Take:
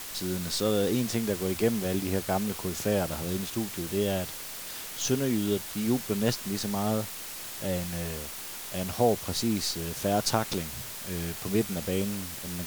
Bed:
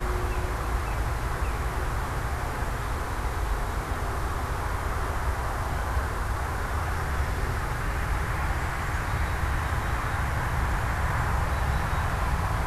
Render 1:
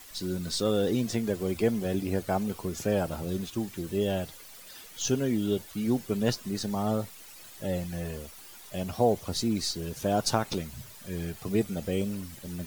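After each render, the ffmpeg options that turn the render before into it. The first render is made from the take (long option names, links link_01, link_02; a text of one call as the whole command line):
ffmpeg -i in.wav -af "afftdn=noise_reduction=12:noise_floor=-40" out.wav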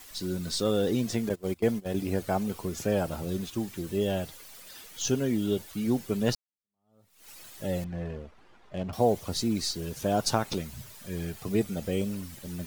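ffmpeg -i in.wav -filter_complex "[0:a]asettb=1/sr,asplit=3[link_01][link_02][link_03];[link_01]atrim=end=1.294[link_04];[link_02]atrim=start=1.29:end=1.97,asetpts=PTS-STARTPTS,afade=type=in:duration=0.004:curve=qsin,afade=type=out:start_time=0.676:duration=0.004:curve=qsin,agate=range=-20dB:threshold=-30dB:ratio=16:release=100:detection=peak[link_05];[link_03]atrim=start=1.966[link_06];[link_04][link_05]acrossfade=duration=0.004:curve1=hsin:curve2=qsin[link_07];[link_07][link_06]acrossfade=duration=0.004:curve1=qsin:curve2=hsin,asettb=1/sr,asplit=3[link_08][link_09][link_10];[link_08]atrim=end=7.844[link_11];[link_09]atrim=start=7.84:end=8.93,asetpts=PTS-STARTPTS,afade=type=in:duration=0.004:curve=qsin,afade=type=out:start_time=1.086:duration=0.004:curve=qsin,adynamicsmooth=sensitivity=6:basefreq=1500[link_12];[link_10]atrim=start=8.926[link_13];[link_11][link_12]acrossfade=duration=0.004:curve1=hsin:curve2=qsin[link_14];[link_14][link_13]acrossfade=duration=0.004:curve1=qsin:curve2=hsin,asplit=2[link_15][link_16];[link_15]atrim=end=6.35,asetpts=PTS-STARTPTS,afade=type=out:start_time=6.346:duration=0.004:curve=hsin[link_17];[link_16]atrim=start=6.35,asetpts=PTS-STARTPTS,afade=type=in:duration=0.94:curve=exp[link_18];[link_17][link_18]concat=n=2:v=0:a=1" out.wav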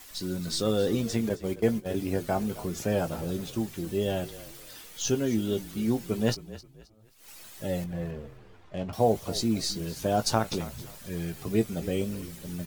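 ffmpeg -i in.wav -filter_complex "[0:a]asplit=2[link_01][link_02];[link_02]adelay=18,volume=-10.5dB[link_03];[link_01][link_03]amix=inputs=2:normalize=0,asplit=4[link_04][link_05][link_06][link_07];[link_05]adelay=265,afreqshift=-34,volume=-16.5dB[link_08];[link_06]adelay=530,afreqshift=-68,volume=-26.4dB[link_09];[link_07]adelay=795,afreqshift=-102,volume=-36.3dB[link_10];[link_04][link_08][link_09][link_10]amix=inputs=4:normalize=0" out.wav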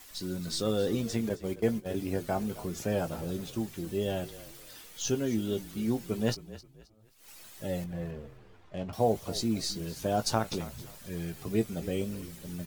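ffmpeg -i in.wav -af "volume=-3dB" out.wav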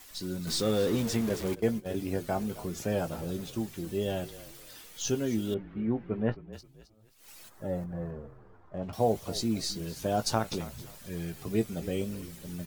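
ffmpeg -i in.wav -filter_complex "[0:a]asettb=1/sr,asplit=3[link_01][link_02][link_03];[link_01]atrim=end=0.474[link_04];[link_02]atrim=start=0.47:end=1.55,asetpts=PTS-STARTPTS,afade=type=in:duration=0.004:curve=qsin,afade=type=out:start_time=1.076:duration=0.004:curve=qsin,aeval=exprs='val(0)+0.5*0.02*sgn(val(0))':channel_layout=same[link_05];[link_03]atrim=start=1.546[link_06];[link_04][link_05]acrossfade=duration=0.004:curve1=hsin:curve2=qsin[link_07];[link_07][link_06]acrossfade=duration=0.004:curve1=qsin:curve2=hsin,asettb=1/sr,asplit=3[link_08][link_09][link_10];[link_08]atrim=end=5.544[link_11];[link_09]atrim=start=5.54:end=6.53,asetpts=PTS-STARTPTS,afade=type=in:duration=0.004:curve=qsin,afade=type=out:start_time=0.986:duration=0.004:curve=qsin,lowpass=frequency=2100:width=0.5412,lowpass=frequency=2100:width=1.3066[link_12];[link_10]atrim=start=6.526[link_13];[link_11][link_12]acrossfade=duration=0.004:curve1=hsin:curve2=qsin[link_14];[link_14][link_13]acrossfade=duration=0.004:curve1=qsin:curve2=hsin,asplit=3[link_15][link_16][link_17];[link_15]afade=type=out:start_time=7.48:duration=0.02[link_18];[link_16]highshelf=frequency=1900:width_type=q:width=1.5:gain=-12.5,afade=type=in:start_time=7.48:duration=0.02,afade=type=out:start_time=8.82:duration=0.02[link_19];[link_17]afade=type=in:start_time=8.82:duration=0.02[link_20];[link_18][link_19][link_20]amix=inputs=3:normalize=0" out.wav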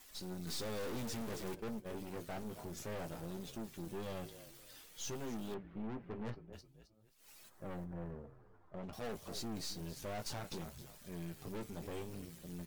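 ffmpeg -i in.wav -af "aeval=exprs='(tanh(63.1*val(0)+0.65)-tanh(0.65))/63.1':channel_layout=same,flanger=delay=4.7:depth=3.4:regen=-66:speed=0.55:shape=sinusoidal" out.wav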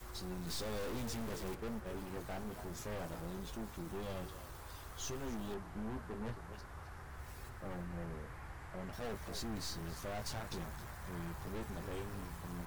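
ffmpeg -i in.wav -i bed.wav -filter_complex "[1:a]volume=-22dB[link_01];[0:a][link_01]amix=inputs=2:normalize=0" out.wav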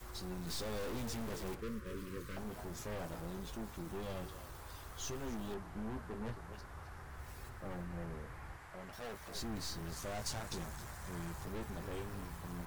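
ffmpeg -i in.wav -filter_complex "[0:a]asettb=1/sr,asplit=3[link_01][link_02][link_03];[link_01]atrim=end=1.614[link_04];[link_02]atrim=start=1.61:end=2.37,asetpts=PTS-STARTPTS,afade=type=in:duration=0.004:curve=qsin,afade=type=out:start_time=0.756:duration=0.004:curve=qsin,asuperstop=centerf=750:order=8:qfactor=1.6[link_05];[link_03]atrim=start=2.366[link_06];[link_04][link_05]acrossfade=duration=0.004:curve1=hsin:curve2=qsin[link_07];[link_07][link_06]acrossfade=duration=0.004:curve1=qsin:curve2=hsin,asettb=1/sr,asplit=3[link_08][link_09][link_10];[link_08]atrim=end=8.564[link_11];[link_09]atrim=start=8.56:end=9.35,asetpts=PTS-STARTPTS,afade=type=in:duration=0.004:curve=qsin,afade=type=out:start_time=0.786:duration=0.004:curve=qsin,lowshelf=frequency=420:gain=-8[link_12];[link_10]atrim=start=9.346[link_13];[link_11][link_12]acrossfade=duration=0.004:curve1=hsin:curve2=qsin[link_14];[link_14][link_13]acrossfade=duration=0.004:curve1=qsin:curve2=hsin,asettb=1/sr,asplit=3[link_15][link_16][link_17];[link_15]atrim=end=9.924[link_18];[link_16]atrim=start=9.92:end=11.45,asetpts=PTS-STARTPTS,afade=type=in:duration=0.004:curve=qsin,afade=type=out:start_time=1.526:duration=0.004:curve=qsin,equalizer=frequency=7400:width=0.94:gain=6[link_19];[link_17]atrim=start=11.446[link_20];[link_18][link_19]acrossfade=duration=0.004:curve1=hsin:curve2=qsin[link_21];[link_21][link_20]acrossfade=duration=0.004:curve1=qsin:curve2=hsin" out.wav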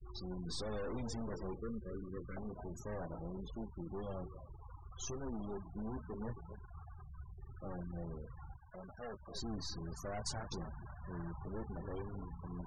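ffmpeg -i in.wav -af "afftfilt=real='re*gte(hypot(re,im),0.00794)':imag='im*gte(hypot(re,im),0.00794)':win_size=1024:overlap=0.75" out.wav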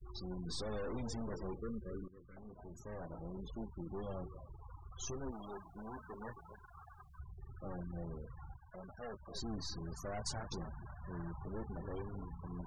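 ffmpeg -i in.wav -filter_complex "[0:a]asettb=1/sr,asplit=3[link_01][link_02][link_03];[link_01]atrim=end=5.314[link_04];[link_02]atrim=start=5.31:end=7.19,asetpts=PTS-STARTPTS,afade=type=in:duration=0.004:curve=qsin,afade=type=out:start_time=1.876:duration=0.004:curve=qsin,tiltshelf=frequency=680:gain=-9[link_05];[link_03]atrim=start=7.186[link_06];[link_04][link_05]acrossfade=duration=0.004:curve1=hsin:curve2=qsin[link_07];[link_07][link_06]acrossfade=duration=0.004:curve1=qsin:curve2=hsin,asplit=2[link_08][link_09];[link_08]atrim=end=2.08,asetpts=PTS-STARTPTS,afade=type=out:start_time=2.076:duration=0.004:curve=hsin:silence=0.149624[link_10];[link_09]atrim=start=2.08,asetpts=PTS-STARTPTS,afade=type=in:duration=1.48:silence=0.149624[link_11];[link_10][link_11]concat=n=2:v=0:a=1" out.wav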